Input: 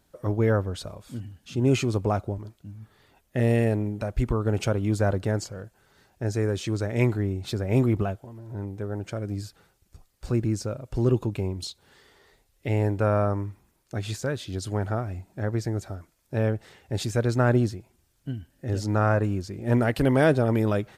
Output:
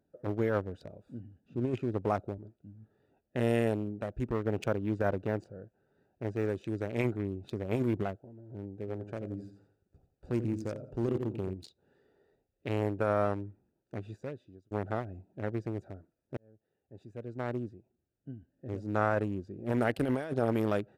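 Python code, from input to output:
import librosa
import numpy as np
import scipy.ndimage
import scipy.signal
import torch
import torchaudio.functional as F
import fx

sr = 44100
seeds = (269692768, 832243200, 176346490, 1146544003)

y = fx.high_shelf(x, sr, hz=2800.0, db=-12.0, at=(1.4, 2.03))
y = fx.resample_linear(y, sr, factor=3, at=(4.3, 6.5))
y = fx.echo_feedback(y, sr, ms=86, feedback_pct=33, wet_db=-8.0, at=(8.85, 11.53), fade=0.02)
y = fx.edit(y, sr, fx.fade_out_span(start_s=13.96, length_s=0.75),
    fx.fade_in_span(start_s=16.37, length_s=2.85), tone=tone)
y = fx.wiener(y, sr, points=41)
y = fx.highpass(y, sr, hz=270.0, slope=6)
y = fx.over_compress(y, sr, threshold_db=-25.0, ratio=-0.5)
y = y * librosa.db_to_amplitude(-2.5)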